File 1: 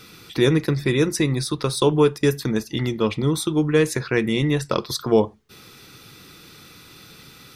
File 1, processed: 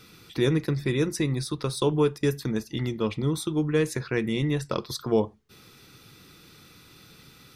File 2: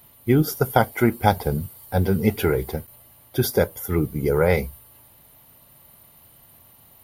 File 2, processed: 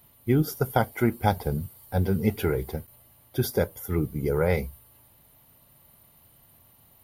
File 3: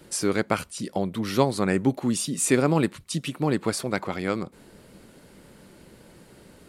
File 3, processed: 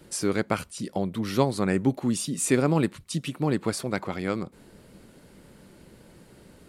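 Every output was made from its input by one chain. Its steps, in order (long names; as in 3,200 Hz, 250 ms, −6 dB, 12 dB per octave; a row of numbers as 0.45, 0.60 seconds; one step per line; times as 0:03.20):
low-shelf EQ 260 Hz +3.5 dB
loudness normalisation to −27 LKFS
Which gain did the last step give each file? −7.0, −6.0, −2.5 decibels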